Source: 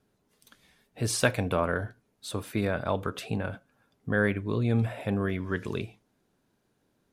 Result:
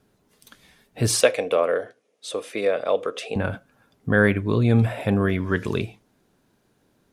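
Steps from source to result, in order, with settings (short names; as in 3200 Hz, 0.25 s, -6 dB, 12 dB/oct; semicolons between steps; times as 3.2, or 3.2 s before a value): 1.21–3.36 speaker cabinet 490–9200 Hz, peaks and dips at 490 Hz +9 dB, 920 Hz -10 dB, 1500 Hz -9 dB, 4300 Hz -5 dB, 7700 Hz -4 dB; gain +7.5 dB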